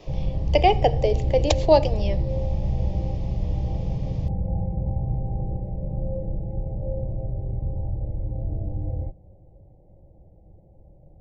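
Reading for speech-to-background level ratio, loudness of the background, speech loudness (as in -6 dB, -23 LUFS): 6.5 dB, -28.5 LUFS, -22.0 LUFS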